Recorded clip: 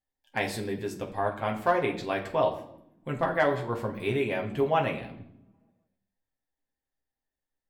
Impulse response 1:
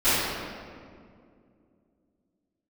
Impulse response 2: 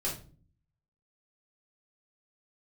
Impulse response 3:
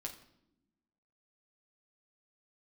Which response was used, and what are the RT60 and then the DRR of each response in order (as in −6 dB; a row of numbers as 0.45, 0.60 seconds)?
3; 2.3 s, 0.40 s, non-exponential decay; −21.0, −6.5, 0.5 decibels